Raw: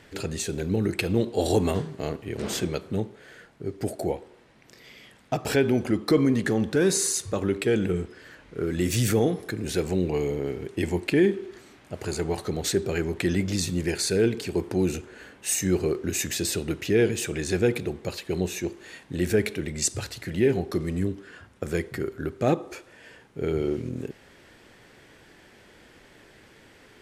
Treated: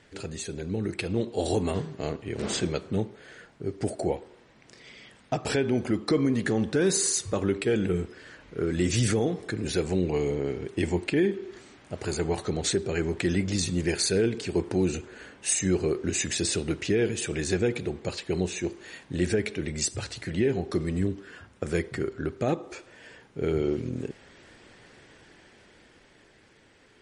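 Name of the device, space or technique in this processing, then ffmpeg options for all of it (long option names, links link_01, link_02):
low-bitrate web radio: -af "dynaudnorm=framelen=160:gausssize=21:maxgain=6dB,alimiter=limit=-9dB:level=0:latency=1:release=317,volume=-5dB" -ar 44100 -c:a libmp3lame -b:a 40k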